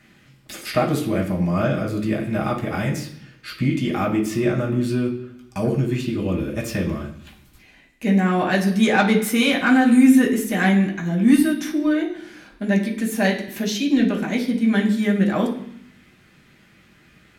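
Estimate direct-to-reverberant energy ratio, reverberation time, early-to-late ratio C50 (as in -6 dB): -3.5 dB, 0.65 s, 8.5 dB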